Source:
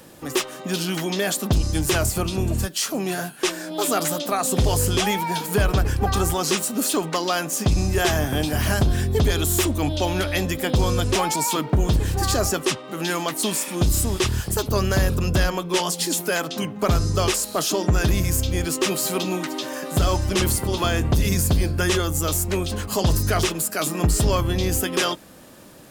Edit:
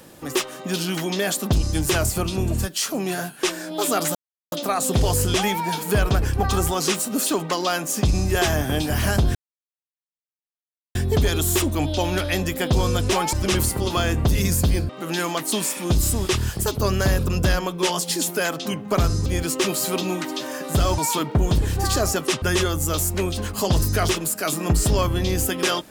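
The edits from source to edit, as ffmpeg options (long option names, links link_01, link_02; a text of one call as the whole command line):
ffmpeg -i in.wav -filter_complex "[0:a]asplit=8[link_01][link_02][link_03][link_04][link_05][link_06][link_07][link_08];[link_01]atrim=end=4.15,asetpts=PTS-STARTPTS,afade=type=out:start_time=4.146:duration=0.004:curve=hsin,apad=pad_dur=0.37[link_09];[link_02]atrim=start=4.15:end=8.98,asetpts=PTS-STARTPTS,afade=type=in:duration=0.004:curve=hsin,afade=type=out:start_time=4.826:duration=0.004:curve=hsin,apad=pad_dur=1.6[link_10];[link_03]atrim=start=8.98:end=11.362,asetpts=PTS-STARTPTS,afade=type=in:duration=0.004:curve=hsin[link_11];[link_04]atrim=start=20.198:end=21.762[link_12];[link_05]atrim=start=12.798:end=17.172[link_13];[link_06]atrim=start=18.478:end=20.202[link_14];[link_07]atrim=start=11.358:end=12.802[link_15];[link_08]atrim=start=21.758[link_16];[link_09][link_10][link_11]concat=n=3:v=0:a=1[link_17];[link_17][link_12]acrossfade=duration=0.004:curve1=hsin:curve2=hsin[link_18];[link_18][link_13]acrossfade=duration=0.004:curve1=hsin:curve2=hsin[link_19];[link_19][link_14]acrossfade=duration=0.004:curve1=hsin:curve2=hsin[link_20];[link_20][link_15]acrossfade=duration=0.004:curve1=hsin:curve2=hsin[link_21];[link_21][link_16]acrossfade=duration=0.004:curve1=hsin:curve2=hsin" out.wav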